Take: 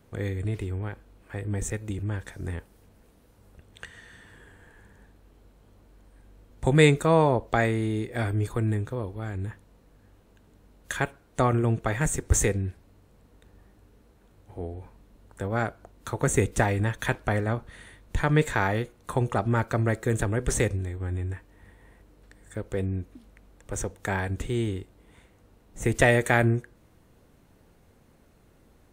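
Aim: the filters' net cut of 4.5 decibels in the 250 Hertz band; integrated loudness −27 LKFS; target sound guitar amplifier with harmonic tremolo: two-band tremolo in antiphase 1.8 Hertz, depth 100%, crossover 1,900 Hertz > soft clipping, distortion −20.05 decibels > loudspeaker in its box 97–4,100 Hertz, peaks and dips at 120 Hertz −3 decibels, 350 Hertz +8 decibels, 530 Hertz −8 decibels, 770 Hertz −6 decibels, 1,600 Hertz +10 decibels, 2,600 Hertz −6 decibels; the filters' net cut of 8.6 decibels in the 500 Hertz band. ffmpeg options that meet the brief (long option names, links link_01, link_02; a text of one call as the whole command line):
ffmpeg -i in.wav -filter_complex "[0:a]equalizer=frequency=250:width_type=o:gain=-7,equalizer=frequency=500:width_type=o:gain=-8.5,acrossover=split=1900[link_01][link_02];[link_01]aeval=exprs='val(0)*(1-1/2+1/2*cos(2*PI*1.8*n/s))':channel_layout=same[link_03];[link_02]aeval=exprs='val(0)*(1-1/2-1/2*cos(2*PI*1.8*n/s))':channel_layout=same[link_04];[link_03][link_04]amix=inputs=2:normalize=0,asoftclip=threshold=-16.5dB,highpass=97,equalizer=frequency=120:width_type=q:width=4:gain=-3,equalizer=frequency=350:width_type=q:width=4:gain=8,equalizer=frequency=530:width_type=q:width=4:gain=-8,equalizer=frequency=770:width_type=q:width=4:gain=-6,equalizer=frequency=1600:width_type=q:width=4:gain=10,equalizer=frequency=2600:width_type=q:width=4:gain=-6,lowpass=frequency=4100:width=0.5412,lowpass=frequency=4100:width=1.3066,volume=8dB" out.wav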